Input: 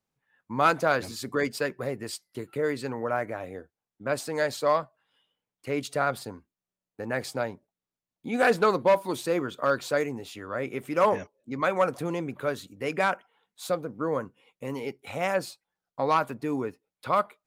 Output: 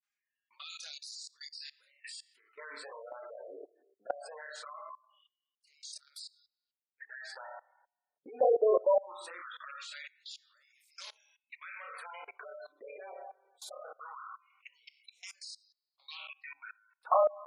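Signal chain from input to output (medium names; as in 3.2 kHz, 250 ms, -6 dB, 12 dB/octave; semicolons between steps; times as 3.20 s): touch-sensitive flanger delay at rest 4.9 ms, full sweep at -19 dBFS; flutter echo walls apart 4.8 m, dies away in 0.34 s; overload inside the chain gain 17.5 dB; LFO high-pass sine 0.21 Hz 460–5000 Hz; on a send at -11.5 dB: reverberation RT60 0.70 s, pre-delay 40 ms; on the sum: spectral gate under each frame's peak -15 dB strong; level held to a coarse grid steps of 23 dB; bass shelf 140 Hz -11 dB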